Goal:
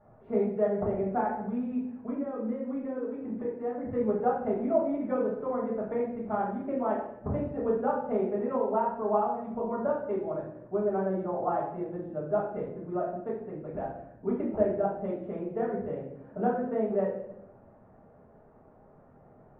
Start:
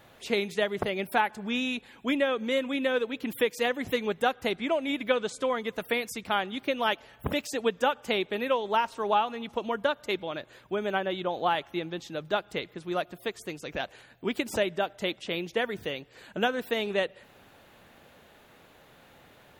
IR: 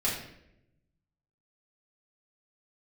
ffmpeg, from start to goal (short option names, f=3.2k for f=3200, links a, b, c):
-filter_complex "[0:a]lowpass=f=1.1k:w=0.5412,lowpass=f=1.1k:w=1.3066,asettb=1/sr,asplit=3[a][b][c];[a]atrim=end=1.364[d];[b]atrim=start=1.36:end=3.86,asetpts=PTS-STARTPTS,afade=t=in:d=0.004:c=qsin,afade=t=out:st=2.496:d=0.004:c=qsin,acompressor=threshold=-31dB:ratio=6[e];[c]atrim=start=3.856[f];[d][e]acrossfade=d=0.004:c1=hsin:c2=qsin[g];[g][f]acrossfade=d=0.004:c1=qsin:c2=hsin[h];[1:a]atrim=start_sample=2205[i];[h][i]afir=irnorm=-1:irlink=0,volume=-8dB"